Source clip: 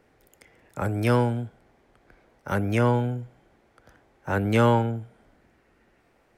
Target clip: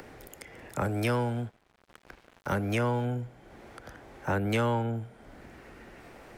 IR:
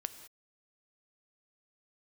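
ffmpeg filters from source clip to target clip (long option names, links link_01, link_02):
-filter_complex "[0:a]acrossover=split=160|510[link_01][link_02][link_03];[link_01]acompressor=threshold=-38dB:ratio=4[link_04];[link_02]acompressor=threshold=-37dB:ratio=4[link_05];[link_03]acompressor=threshold=-34dB:ratio=4[link_06];[link_04][link_05][link_06]amix=inputs=3:normalize=0,asettb=1/sr,asplit=3[link_07][link_08][link_09];[link_07]atrim=end=0.804[link_10];[link_08]atrim=start=0.8:end=3.05,asetpts=PTS-STARTPTS,afade=type=in:duration=0.004:curve=qsin,afade=type=out:start_time=2.246:duration=0.004:curve=qsin,aeval=exprs='sgn(val(0))*max(abs(val(0))-0.0015,0)':channel_layout=same[link_11];[link_09]atrim=start=3.046[link_12];[link_10][link_11]acrossfade=duration=0.004:curve1=hsin:curve2=qsin[link_13];[link_13][link_12]acrossfade=duration=0.004:curve1=qsin:curve2=hsin,acompressor=mode=upward:threshold=-42dB:ratio=2.5,volume=3.5dB"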